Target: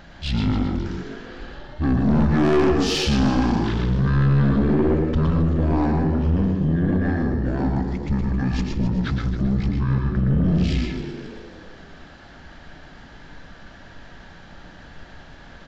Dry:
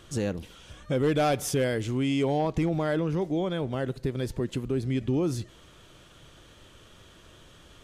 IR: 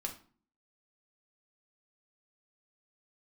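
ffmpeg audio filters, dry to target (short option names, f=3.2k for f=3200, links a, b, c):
-filter_complex "[0:a]asetrate=22050,aresample=44100,asplit=5[a][b][c][d][e];[b]adelay=268,afreqshift=85,volume=-12.5dB[f];[c]adelay=536,afreqshift=170,volume=-19.8dB[g];[d]adelay=804,afreqshift=255,volume=-27.2dB[h];[e]adelay=1072,afreqshift=340,volume=-34.5dB[i];[a][f][g][h][i]amix=inputs=5:normalize=0,asplit=2[j][k];[1:a]atrim=start_sample=2205,adelay=115[l];[k][l]afir=irnorm=-1:irlink=0,volume=-3dB[m];[j][m]amix=inputs=2:normalize=0,aeval=exprs='(tanh(12.6*val(0)+0.35)-tanh(0.35))/12.6':c=same,volume=8.5dB"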